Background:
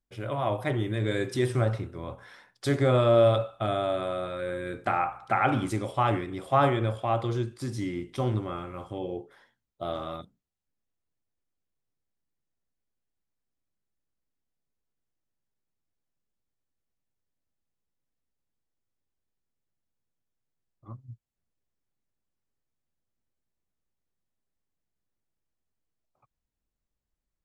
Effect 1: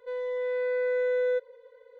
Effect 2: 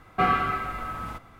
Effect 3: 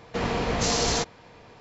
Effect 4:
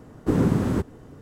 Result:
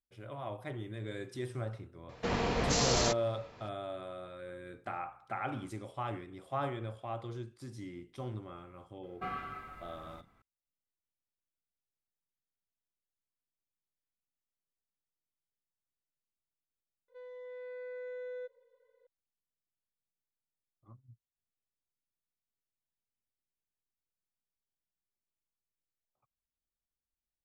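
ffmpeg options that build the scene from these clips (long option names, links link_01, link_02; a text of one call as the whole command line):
ffmpeg -i bed.wav -i cue0.wav -i cue1.wav -i cue2.wav -filter_complex "[0:a]volume=-13dB[link_01];[3:a]atrim=end=1.6,asetpts=PTS-STARTPTS,volume=-5dB,afade=type=in:duration=0.004:curve=hsin,afade=type=out:start_time=1.596:duration=0.004:curve=hsin,adelay=2090[link_02];[2:a]atrim=end=1.39,asetpts=PTS-STARTPTS,volume=-17dB,afade=type=in:duration=0.004:curve=hsin,afade=type=out:start_time=1.386:duration=0.004:curve=hsin,adelay=9030[link_03];[1:a]atrim=end=1.99,asetpts=PTS-STARTPTS,volume=-16dB,afade=type=in:duration=0.004:curve=hsin,afade=type=out:start_time=1.986:duration=0.004:curve=hsin,adelay=17080[link_04];[link_01][link_02][link_03][link_04]amix=inputs=4:normalize=0" out.wav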